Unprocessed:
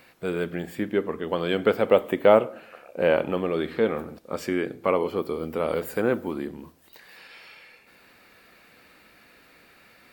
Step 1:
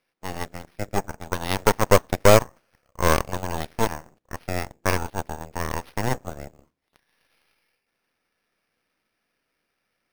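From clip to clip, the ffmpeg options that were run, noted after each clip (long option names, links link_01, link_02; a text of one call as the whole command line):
ffmpeg -i in.wav -af "acrusher=samples=6:mix=1:aa=0.000001,bandreject=frequency=63.76:width_type=h:width=4,bandreject=frequency=127.52:width_type=h:width=4,bandreject=frequency=191.28:width_type=h:width=4,bandreject=frequency=255.04:width_type=h:width=4,aeval=exprs='0.631*(cos(1*acos(clip(val(0)/0.631,-1,1)))-cos(1*PI/2))+0.0316*(cos(3*acos(clip(val(0)/0.631,-1,1)))-cos(3*PI/2))+0.126*(cos(4*acos(clip(val(0)/0.631,-1,1)))-cos(4*PI/2))+0.0708*(cos(7*acos(clip(val(0)/0.631,-1,1)))-cos(7*PI/2))+0.0562*(cos(8*acos(clip(val(0)/0.631,-1,1)))-cos(8*PI/2))':channel_layout=same,volume=1.5dB" out.wav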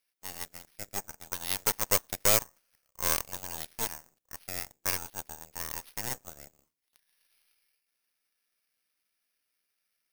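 ffmpeg -i in.wav -af "crystalizer=i=8.5:c=0,volume=-18dB" out.wav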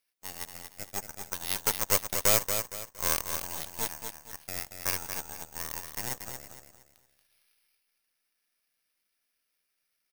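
ffmpeg -i in.wav -af "aecho=1:1:232|464|696|928:0.447|0.152|0.0516|0.0176" out.wav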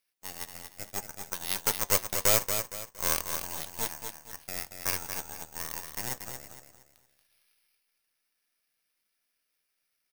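ffmpeg -i in.wav -af "flanger=delay=5.2:depth=2.3:regen=-80:speed=0.66:shape=triangular,volume=4.5dB" out.wav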